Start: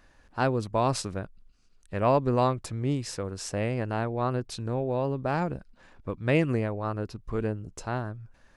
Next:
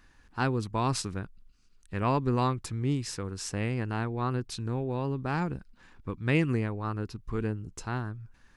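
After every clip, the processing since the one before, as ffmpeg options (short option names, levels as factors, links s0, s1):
-af "equalizer=f=600:w=2.4:g=-12"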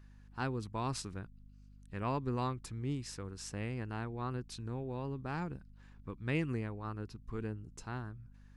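-af "aeval=exprs='val(0)+0.00447*(sin(2*PI*50*n/s)+sin(2*PI*2*50*n/s)/2+sin(2*PI*3*50*n/s)/3+sin(2*PI*4*50*n/s)/4+sin(2*PI*5*50*n/s)/5)':c=same,volume=0.376"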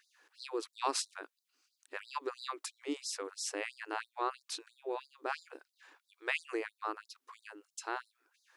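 -af "afftfilt=real='re*gte(b*sr/1024,260*pow(3800/260,0.5+0.5*sin(2*PI*3*pts/sr)))':imag='im*gte(b*sr/1024,260*pow(3800/260,0.5+0.5*sin(2*PI*3*pts/sr)))':win_size=1024:overlap=0.75,volume=2.37"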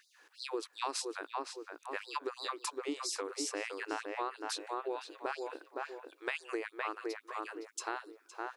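-filter_complex "[0:a]asplit=2[s0][s1];[s1]adelay=514,lowpass=f=1600:p=1,volume=0.596,asplit=2[s2][s3];[s3]adelay=514,lowpass=f=1600:p=1,volume=0.38,asplit=2[s4][s5];[s5]adelay=514,lowpass=f=1600:p=1,volume=0.38,asplit=2[s6][s7];[s7]adelay=514,lowpass=f=1600:p=1,volume=0.38,asplit=2[s8][s9];[s9]adelay=514,lowpass=f=1600:p=1,volume=0.38[s10];[s2][s4][s6][s8][s10]amix=inputs=5:normalize=0[s11];[s0][s11]amix=inputs=2:normalize=0,acompressor=threshold=0.0141:ratio=6,volume=1.58"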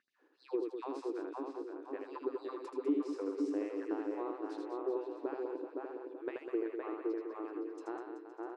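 -filter_complex "[0:a]bandpass=f=270:t=q:w=2:csg=0,asplit=2[s0][s1];[s1]aecho=0:1:80|200|380|650|1055:0.631|0.398|0.251|0.158|0.1[s2];[s0][s2]amix=inputs=2:normalize=0,volume=2.37"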